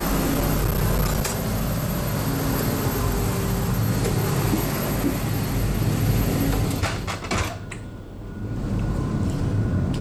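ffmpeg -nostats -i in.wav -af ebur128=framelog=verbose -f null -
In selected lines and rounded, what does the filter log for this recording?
Integrated loudness:
  I:         -24.0 LUFS
  Threshold: -34.2 LUFS
Loudness range:
  LRA:         3.4 LU
  Threshold: -44.2 LUFS
  LRA low:   -26.6 LUFS
  LRA high:  -23.2 LUFS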